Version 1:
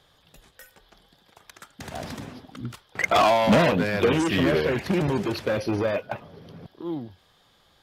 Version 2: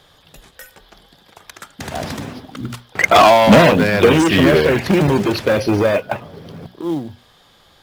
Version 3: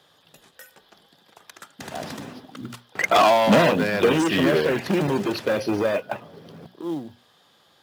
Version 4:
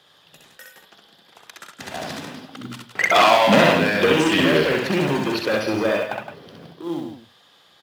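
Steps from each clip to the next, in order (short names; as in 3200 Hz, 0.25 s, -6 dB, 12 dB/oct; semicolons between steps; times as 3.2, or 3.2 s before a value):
notches 60/120/180/240 Hz; in parallel at -5.5 dB: short-mantissa float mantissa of 2-bit; on the sum: gain +6 dB
HPF 150 Hz 12 dB/oct; notch 2200 Hz, Q 20; gain -7 dB
bell 2700 Hz +5 dB 2.2 oct; on a send: loudspeakers at several distances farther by 22 m -3 dB, 57 m -9 dB; on the sum: gain -1 dB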